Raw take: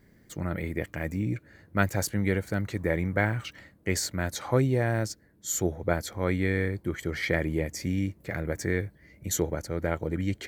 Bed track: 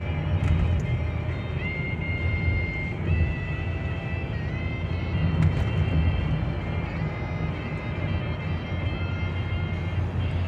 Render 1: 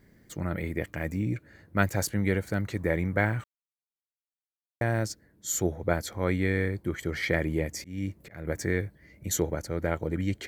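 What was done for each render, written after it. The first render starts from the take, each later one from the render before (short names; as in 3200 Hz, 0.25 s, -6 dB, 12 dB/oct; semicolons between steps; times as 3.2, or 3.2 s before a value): 3.44–4.81 mute; 7.74–8.47 auto swell 0.272 s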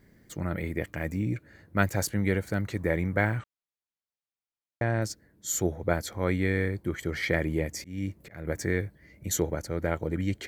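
3.39–5.02 air absorption 80 m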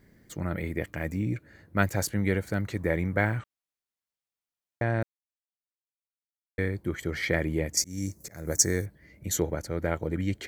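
5.03–6.58 mute; 7.77–8.86 resonant high shelf 4300 Hz +13 dB, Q 3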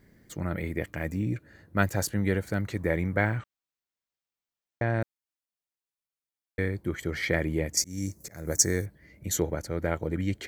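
1.1–2.43 notch 2200 Hz; 3.17–4.94 bell 11000 Hz -14.5 dB 0.4 oct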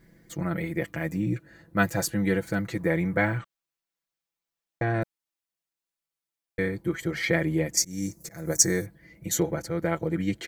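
comb 6 ms, depth 78%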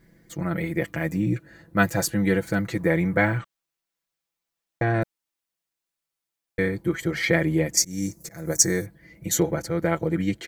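AGC gain up to 3.5 dB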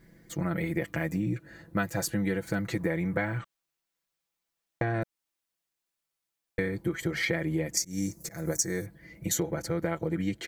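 compressor 5:1, threshold -26 dBFS, peak gain reduction 12.5 dB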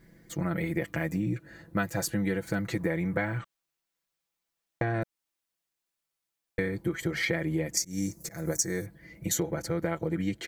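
nothing audible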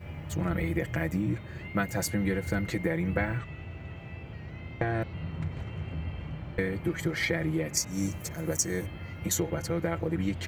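add bed track -12.5 dB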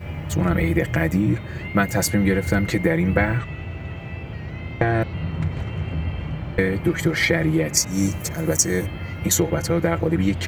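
gain +9.5 dB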